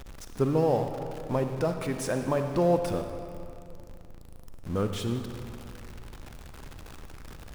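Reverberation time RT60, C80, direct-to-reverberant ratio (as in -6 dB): 2.6 s, 7.5 dB, 6.0 dB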